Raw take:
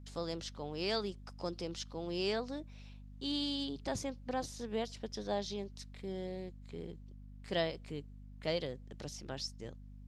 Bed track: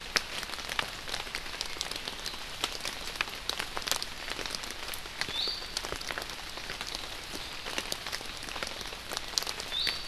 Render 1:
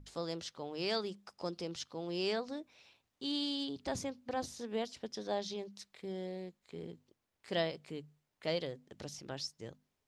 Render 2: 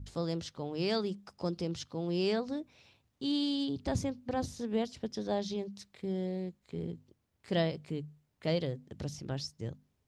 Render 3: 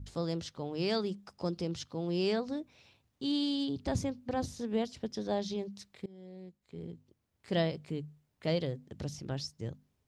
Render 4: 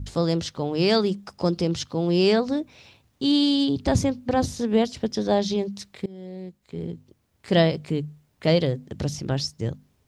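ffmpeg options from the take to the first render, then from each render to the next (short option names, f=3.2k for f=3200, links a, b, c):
-af "bandreject=f=50:t=h:w=6,bandreject=f=100:t=h:w=6,bandreject=f=150:t=h:w=6,bandreject=f=200:t=h:w=6,bandreject=f=250:t=h:w=6"
-af "equalizer=f=85:w=0.36:g=14"
-filter_complex "[0:a]asplit=2[a][b];[a]atrim=end=6.06,asetpts=PTS-STARTPTS,afade=t=out:st=6.056:d=0.004:c=hsin:silence=0.0749894[c];[b]atrim=start=6.06,asetpts=PTS-STARTPTS,afade=t=in:d=1.52:silence=0.0749894[d];[c][d]concat=n=2:v=0:a=1"
-af "volume=11.5dB"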